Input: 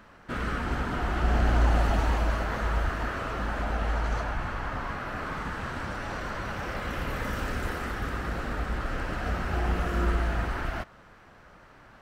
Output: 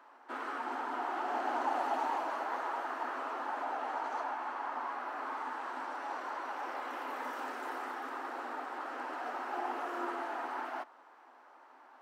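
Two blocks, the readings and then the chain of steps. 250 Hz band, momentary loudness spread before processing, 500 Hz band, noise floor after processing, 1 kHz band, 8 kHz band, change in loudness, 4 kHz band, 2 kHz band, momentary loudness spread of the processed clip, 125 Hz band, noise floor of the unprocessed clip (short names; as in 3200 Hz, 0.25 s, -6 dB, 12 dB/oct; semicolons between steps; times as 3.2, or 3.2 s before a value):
-12.5 dB, 8 LU, -6.5 dB, -59 dBFS, -1.0 dB, under -10 dB, -7.5 dB, -10.5 dB, -8.0 dB, 7 LU, under -40 dB, -53 dBFS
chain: rippled Chebyshev high-pass 250 Hz, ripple 3 dB; bell 870 Hz +11.5 dB 0.76 oct; gain -8.5 dB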